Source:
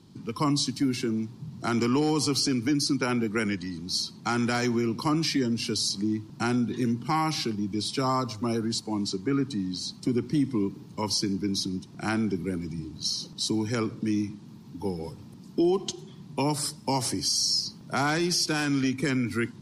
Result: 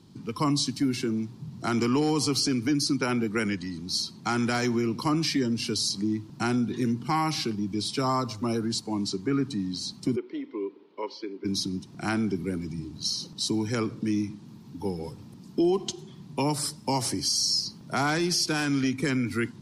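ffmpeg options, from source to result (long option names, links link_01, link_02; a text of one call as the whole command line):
ffmpeg -i in.wav -filter_complex "[0:a]asplit=3[link_01][link_02][link_03];[link_01]afade=type=out:start_time=10.15:duration=0.02[link_04];[link_02]highpass=frequency=380:width=0.5412,highpass=frequency=380:width=1.3066,equalizer=frequency=400:width_type=q:width=4:gain=4,equalizer=frequency=760:width_type=q:width=4:gain=-9,equalizer=frequency=1200:width_type=q:width=4:gain=-5,equalizer=frequency=1700:width_type=q:width=4:gain=-6,equalizer=frequency=2700:width_type=q:width=4:gain=-4,lowpass=frequency=3000:width=0.5412,lowpass=frequency=3000:width=1.3066,afade=type=in:start_time=10.15:duration=0.02,afade=type=out:start_time=11.44:duration=0.02[link_05];[link_03]afade=type=in:start_time=11.44:duration=0.02[link_06];[link_04][link_05][link_06]amix=inputs=3:normalize=0" out.wav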